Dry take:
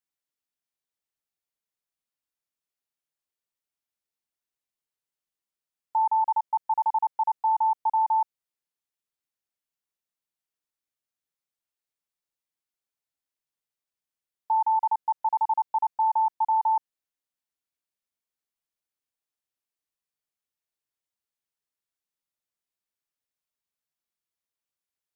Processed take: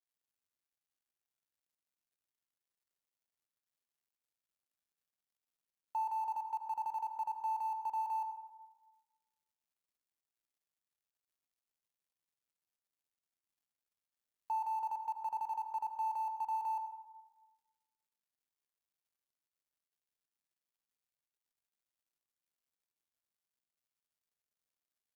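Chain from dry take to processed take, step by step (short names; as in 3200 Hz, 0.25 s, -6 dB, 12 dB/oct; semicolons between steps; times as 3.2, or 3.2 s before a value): G.711 law mismatch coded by mu; limiter -26 dBFS, peak gain reduction 7.5 dB; reverb RT60 1.2 s, pre-delay 67 ms, DRR 7.5 dB; gain -5 dB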